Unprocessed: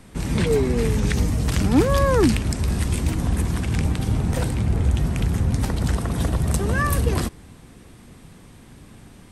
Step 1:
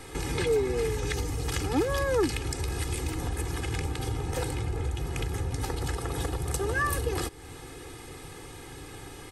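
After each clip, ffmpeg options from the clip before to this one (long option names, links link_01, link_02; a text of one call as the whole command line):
ffmpeg -i in.wav -af "aecho=1:1:2.4:0.92,acompressor=threshold=-31dB:ratio=2.5,lowshelf=frequency=140:gain=-9.5,volume=4dB" out.wav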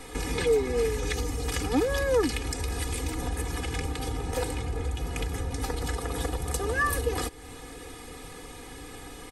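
ffmpeg -i in.wav -af "aecho=1:1:4.1:0.56" out.wav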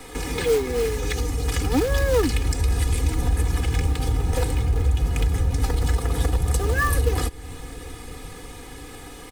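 ffmpeg -i in.wav -filter_complex "[0:a]acrossover=split=160|5300[link_01][link_02][link_03];[link_01]dynaudnorm=framelen=330:gausssize=9:maxgain=9dB[link_04];[link_02]acrusher=bits=3:mode=log:mix=0:aa=0.000001[link_05];[link_04][link_05][link_03]amix=inputs=3:normalize=0,volume=2.5dB" out.wav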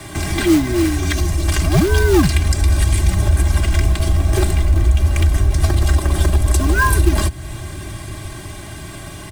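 ffmpeg -i in.wav -af "afreqshift=-130,volume=7dB" out.wav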